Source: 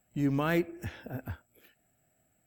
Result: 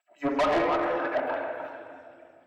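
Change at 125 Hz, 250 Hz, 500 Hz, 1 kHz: -13.5, 0.0, +10.5, +13.0 dB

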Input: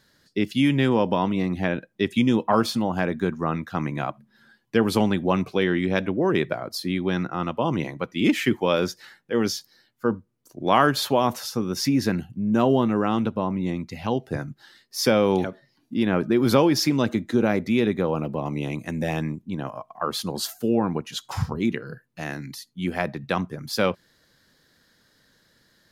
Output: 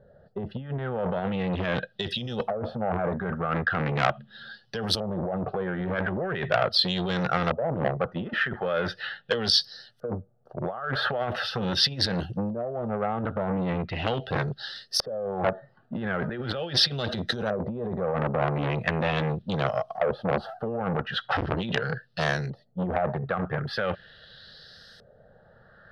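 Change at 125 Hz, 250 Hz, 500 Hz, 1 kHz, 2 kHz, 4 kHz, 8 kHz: -2.0, -9.0, -4.0, -3.0, +0.5, +3.5, -7.5 dB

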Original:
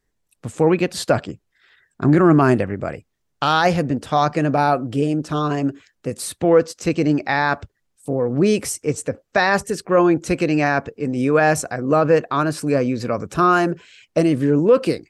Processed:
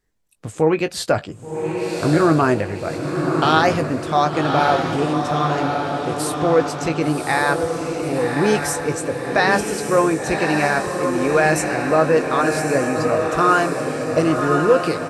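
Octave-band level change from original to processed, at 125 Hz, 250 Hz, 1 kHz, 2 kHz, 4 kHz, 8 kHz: -1.5, -1.5, +2.0, +2.5, +2.0, +2.5 dB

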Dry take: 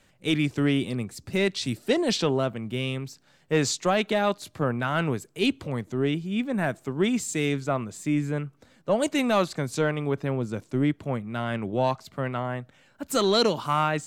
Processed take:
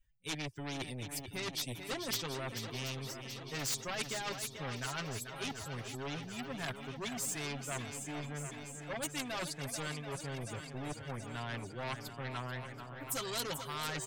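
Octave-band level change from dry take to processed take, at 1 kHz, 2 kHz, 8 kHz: -13.0, -9.5, -3.5 dB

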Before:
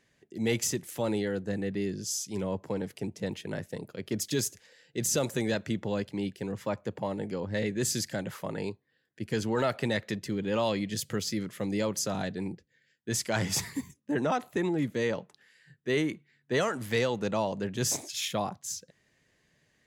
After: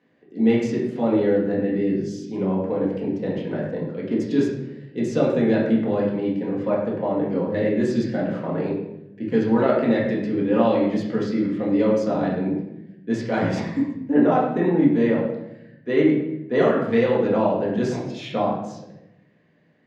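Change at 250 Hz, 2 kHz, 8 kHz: +12.0 dB, +3.5 dB, under -15 dB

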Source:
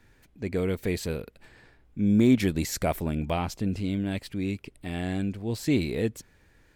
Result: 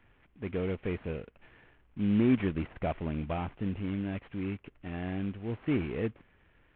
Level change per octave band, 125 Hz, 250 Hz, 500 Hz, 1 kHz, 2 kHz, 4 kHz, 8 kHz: -5.0 dB, -5.0 dB, -5.0 dB, -5.0 dB, -5.5 dB, -12.0 dB, under -40 dB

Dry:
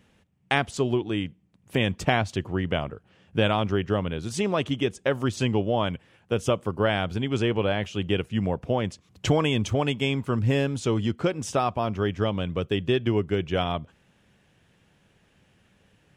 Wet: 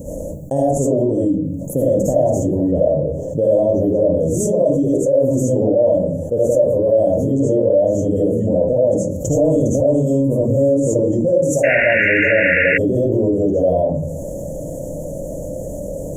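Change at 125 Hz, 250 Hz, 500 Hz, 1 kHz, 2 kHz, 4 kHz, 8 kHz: +6.0 dB, +9.5 dB, +13.0 dB, 0.0 dB, +12.0 dB, n/a, +11.0 dB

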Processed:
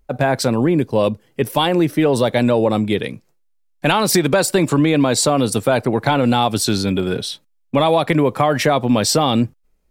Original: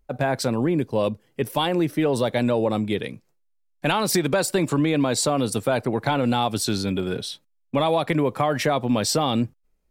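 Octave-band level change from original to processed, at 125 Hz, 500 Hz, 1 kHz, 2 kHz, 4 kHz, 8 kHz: +6.0, +6.0, +6.0, +6.0, +6.0, +6.0 dB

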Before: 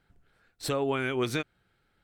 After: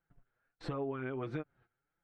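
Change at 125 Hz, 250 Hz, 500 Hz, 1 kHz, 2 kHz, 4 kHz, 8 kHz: -5.5 dB, -7.5 dB, -9.5 dB, -10.0 dB, -13.5 dB, -19.5 dB, under -25 dB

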